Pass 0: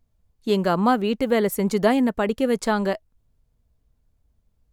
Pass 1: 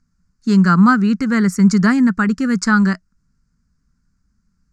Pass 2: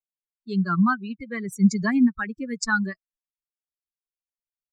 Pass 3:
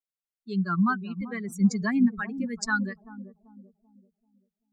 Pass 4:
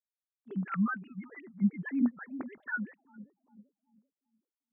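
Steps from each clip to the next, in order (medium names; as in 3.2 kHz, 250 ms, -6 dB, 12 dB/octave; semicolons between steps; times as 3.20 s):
FFT filter 120 Hz 0 dB, 180 Hz +15 dB, 600 Hz -14 dB, 910 Hz -2 dB, 1.4 kHz +15 dB, 3.4 kHz -9 dB, 4.9 kHz +12 dB, 7.1 kHz +10 dB, 13 kHz -15 dB
expander on every frequency bin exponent 3; gain riding 2 s; trim -4 dB
bucket-brigade echo 387 ms, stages 2048, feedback 38%, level -11.5 dB; trim -3.5 dB
formants replaced by sine waves; trim -7 dB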